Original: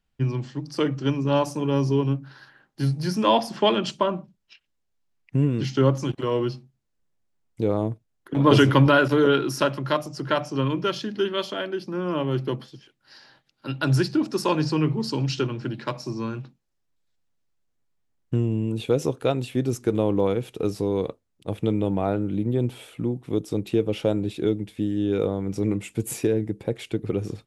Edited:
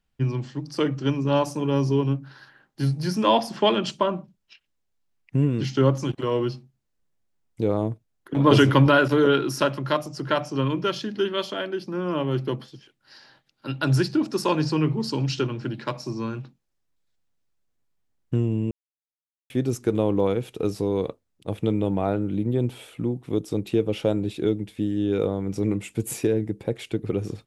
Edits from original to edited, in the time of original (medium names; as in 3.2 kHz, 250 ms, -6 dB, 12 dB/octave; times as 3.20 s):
18.71–19.50 s: mute